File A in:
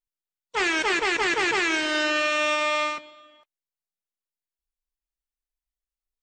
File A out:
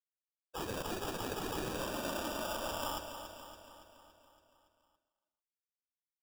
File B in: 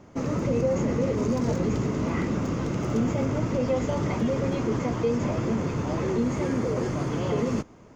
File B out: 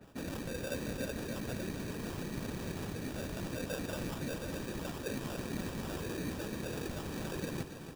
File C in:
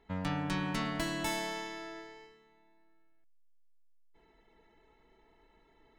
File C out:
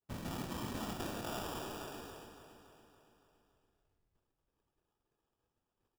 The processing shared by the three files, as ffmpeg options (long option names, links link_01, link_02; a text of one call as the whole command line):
ffmpeg -i in.wav -af "agate=range=-33dB:threshold=-53dB:ratio=3:detection=peak,bandreject=frequency=2400:width=12,areverse,acompressor=threshold=-35dB:ratio=5,areverse,afftfilt=real='hypot(re,im)*cos(2*PI*random(0))':imag='hypot(re,im)*sin(2*PI*random(1))':win_size=512:overlap=0.75,acrusher=samples=21:mix=1:aa=0.000001,aecho=1:1:282|564|846|1128|1410|1692|1974:0.316|0.187|0.11|0.0649|0.0383|0.0226|0.0133,adynamicequalizer=threshold=0.00126:dfrequency=2900:dqfactor=0.7:tfrequency=2900:tqfactor=0.7:attack=5:release=100:ratio=0.375:range=1.5:mode=boostabove:tftype=highshelf,volume=3dB" out.wav